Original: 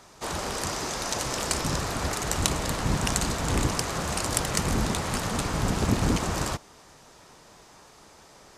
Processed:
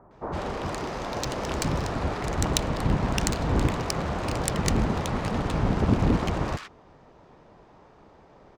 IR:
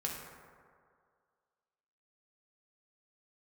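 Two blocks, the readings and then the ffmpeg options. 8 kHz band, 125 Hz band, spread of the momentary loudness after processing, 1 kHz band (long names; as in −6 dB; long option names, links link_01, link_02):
−6.5 dB, +2.5 dB, 8 LU, 0.0 dB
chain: -filter_complex "[0:a]adynamicsmooth=sensitivity=2:basefreq=1600,acrossover=split=1400[link_01][link_02];[link_02]adelay=110[link_03];[link_01][link_03]amix=inputs=2:normalize=0,volume=2.5dB"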